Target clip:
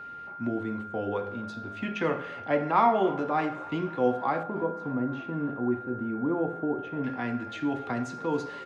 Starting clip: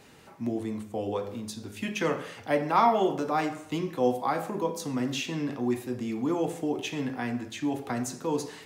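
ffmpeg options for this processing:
ffmpeg -i in.wav -filter_complex "[0:a]asetnsamples=nb_out_samples=441:pad=0,asendcmd='4.43 lowpass f 1000;7.04 lowpass f 3500',lowpass=2800,aeval=exprs='val(0)+0.0112*sin(2*PI*1400*n/s)':channel_layout=same,asplit=6[link_01][link_02][link_03][link_04][link_05][link_06];[link_02]adelay=279,afreqshift=84,volume=-22dB[link_07];[link_03]adelay=558,afreqshift=168,volume=-26dB[link_08];[link_04]adelay=837,afreqshift=252,volume=-30dB[link_09];[link_05]adelay=1116,afreqshift=336,volume=-34dB[link_10];[link_06]adelay=1395,afreqshift=420,volume=-38.1dB[link_11];[link_01][link_07][link_08][link_09][link_10][link_11]amix=inputs=6:normalize=0" out.wav

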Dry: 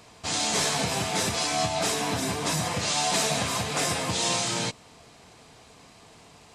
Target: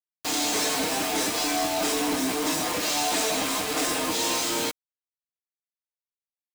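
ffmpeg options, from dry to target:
ffmpeg -i in.wav -af "lowshelf=frequency=200:width_type=q:width=3:gain=-9.5,aecho=1:1:6.5:0.46,acrusher=bits=4:mix=0:aa=0.000001,volume=21dB,asoftclip=hard,volume=-21dB" out.wav

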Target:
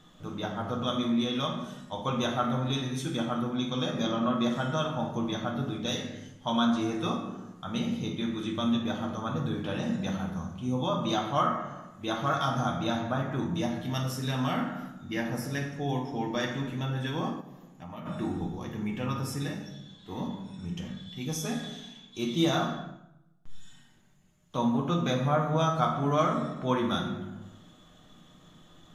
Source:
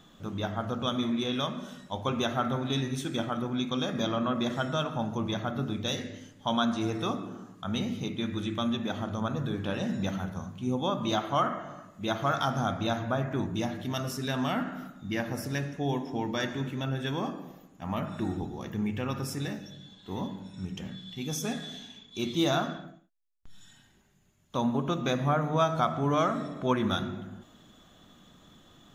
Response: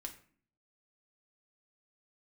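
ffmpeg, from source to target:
-filter_complex "[1:a]atrim=start_sample=2205,asetrate=26019,aresample=44100[link_01];[0:a][link_01]afir=irnorm=-1:irlink=0,asplit=3[link_02][link_03][link_04];[link_02]afade=type=out:start_time=17.4:duration=0.02[link_05];[link_03]acompressor=threshold=-44dB:ratio=2.5,afade=type=in:start_time=17.4:duration=0.02,afade=type=out:start_time=18.05:duration=0.02[link_06];[link_04]afade=type=in:start_time=18.05:duration=0.02[link_07];[link_05][link_06][link_07]amix=inputs=3:normalize=0"

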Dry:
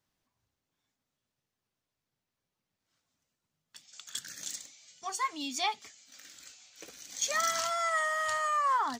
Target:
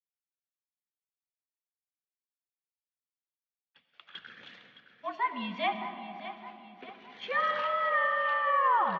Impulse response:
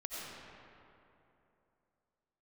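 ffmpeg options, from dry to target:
-filter_complex "[0:a]agate=range=-33dB:threshold=-48dB:ratio=3:detection=peak,aecho=1:1:614|1228|1842|2456:0.237|0.107|0.048|0.0216,asplit=2[link_01][link_02];[1:a]atrim=start_sample=2205,lowshelf=frequency=310:gain=10.5[link_03];[link_02][link_03]afir=irnorm=-1:irlink=0,volume=-7dB[link_04];[link_01][link_04]amix=inputs=2:normalize=0,highpass=frequency=250:width_type=q:width=0.5412,highpass=frequency=250:width_type=q:width=1.307,lowpass=frequency=3100:width_type=q:width=0.5176,lowpass=frequency=3100:width_type=q:width=0.7071,lowpass=frequency=3100:width_type=q:width=1.932,afreqshift=-64"

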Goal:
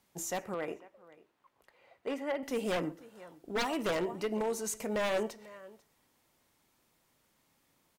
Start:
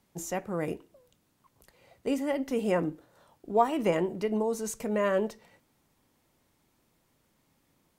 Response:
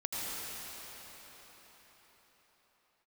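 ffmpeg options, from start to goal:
-filter_complex "[0:a]lowshelf=frequency=460:gain=-8,aecho=1:1:494:0.0841,asplit=2[link_01][link_02];[1:a]atrim=start_sample=2205,atrim=end_sample=6174[link_03];[link_02][link_03]afir=irnorm=-1:irlink=0,volume=-18dB[link_04];[link_01][link_04]amix=inputs=2:normalize=0,aeval=exprs='0.0531*(abs(mod(val(0)/0.0531+3,4)-2)-1)':channel_layout=same,asettb=1/sr,asplit=3[link_05][link_06][link_07];[link_05]atrim=end=0.544[link_08];[link_06]atrim=start=0.54:end=2.43,asetpts=PTS-STARTPTS,afade=type=in:duration=0.004:curve=qsin,afade=type=out:start_time=1.886:duration=0.004:curve=qsin,bass=frequency=250:gain=-10,treble=frequency=4000:gain=-15[link_09];[link_07]atrim=start=2.426[link_10];[link_08][link_09]acrossfade=duration=0.004:curve1=hsin:curve2=qsin[link_11];[link_11][link_10]acrossfade=duration=0.004:curve1=qsin:curve2=hsin"

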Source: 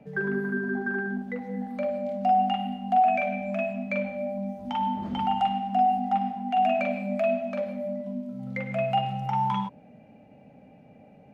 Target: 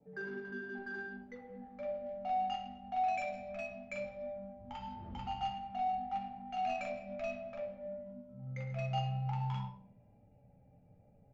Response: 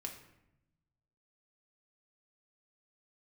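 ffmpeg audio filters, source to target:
-filter_complex "[0:a]adynamicequalizer=threshold=0.00447:dfrequency=3100:dqfactor=1.1:tfrequency=3100:tqfactor=1.1:attack=5:release=100:ratio=0.375:range=3.5:mode=boostabove:tftype=bell,adynamicsmooth=sensitivity=2:basefreq=1600,aresample=16000,aresample=44100[link_01];[1:a]atrim=start_sample=2205,asetrate=88200,aresample=44100[link_02];[link_01][link_02]afir=irnorm=-1:irlink=0,asubboost=boost=9.5:cutoff=81,volume=-5dB"

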